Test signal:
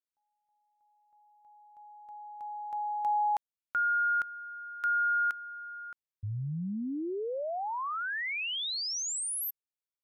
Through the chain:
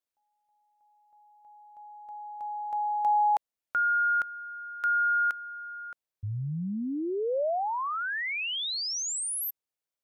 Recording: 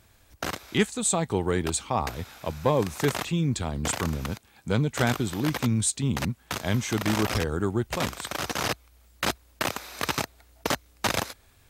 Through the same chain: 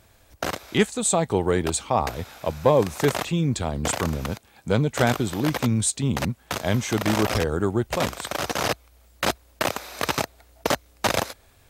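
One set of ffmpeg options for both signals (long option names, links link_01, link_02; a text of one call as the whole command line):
ffmpeg -i in.wav -af "equalizer=frequency=590:width_type=o:width=1:gain=5,volume=2dB" out.wav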